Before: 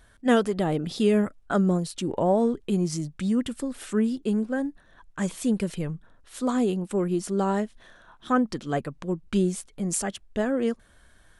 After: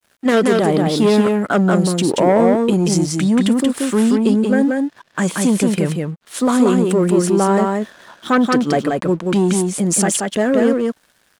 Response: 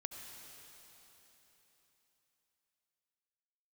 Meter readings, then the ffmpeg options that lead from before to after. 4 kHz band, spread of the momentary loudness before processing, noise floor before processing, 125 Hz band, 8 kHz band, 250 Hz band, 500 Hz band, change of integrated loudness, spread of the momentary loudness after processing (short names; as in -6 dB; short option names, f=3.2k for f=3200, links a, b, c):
+12.0 dB, 10 LU, -57 dBFS, +10.0 dB, +13.0 dB, +10.5 dB, +10.5 dB, +10.5 dB, 7 LU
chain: -af "aeval=exprs='0.355*(cos(1*acos(clip(val(0)/0.355,-1,1)))-cos(1*PI/2))+0.0794*(cos(5*acos(clip(val(0)/0.355,-1,1)))-cos(5*PI/2))':c=same,adynamicequalizer=threshold=0.00794:dfrequency=5000:dqfactor=0.73:tfrequency=5000:tqfactor=0.73:attack=5:release=100:ratio=0.375:range=2:mode=cutabove:tftype=bell,alimiter=limit=-16.5dB:level=0:latency=1:release=14,highpass=170,aeval=exprs='sgn(val(0))*max(abs(val(0))-0.00282,0)':c=same,aecho=1:1:181:0.708,volume=8dB"